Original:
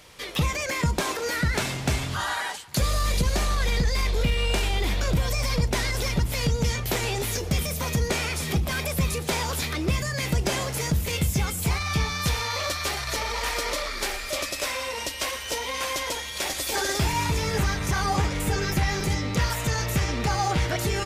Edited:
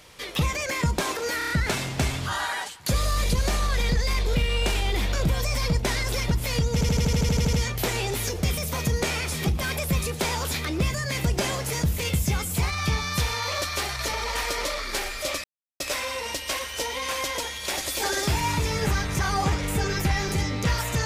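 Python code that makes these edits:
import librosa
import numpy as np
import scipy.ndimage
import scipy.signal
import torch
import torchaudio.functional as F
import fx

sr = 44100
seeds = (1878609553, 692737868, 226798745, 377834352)

y = fx.edit(x, sr, fx.stutter(start_s=1.38, slice_s=0.03, count=5),
    fx.stutter(start_s=6.61, slice_s=0.08, count=11),
    fx.insert_silence(at_s=14.52, length_s=0.36), tone=tone)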